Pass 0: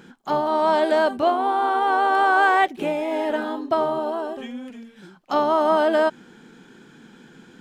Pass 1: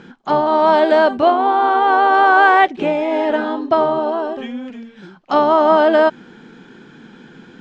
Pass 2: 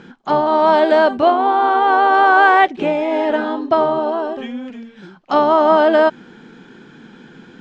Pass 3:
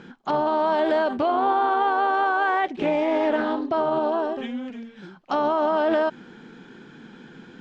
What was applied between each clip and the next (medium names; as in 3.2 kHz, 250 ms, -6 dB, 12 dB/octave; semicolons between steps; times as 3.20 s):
Bessel low-pass 4.4 kHz, order 8; trim +6.5 dB
no audible change
peak limiter -10.5 dBFS, peak gain reduction 9 dB; loudspeaker Doppler distortion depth 0.18 ms; trim -3.5 dB